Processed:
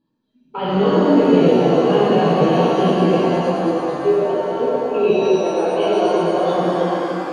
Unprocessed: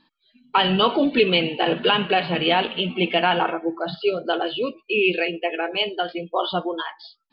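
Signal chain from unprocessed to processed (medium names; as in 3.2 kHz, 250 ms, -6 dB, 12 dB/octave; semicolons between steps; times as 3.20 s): ten-band graphic EQ 125 Hz +10 dB, 250 Hz +3 dB, 500 Hz +9 dB, 1 kHz -4 dB, 2 kHz -11 dB, 4 kHz -10 dB; 3.18–5.44 s: level held to a coarse grid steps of 16 dB; peak limiter -12 dBFS, peak gain reduction 11 dB; level rider gain up to 13 dB; pitch-shifted reverb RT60 3.1 s, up +7 st, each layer -8 dB, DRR -9.5 dB; trim -14.5 dB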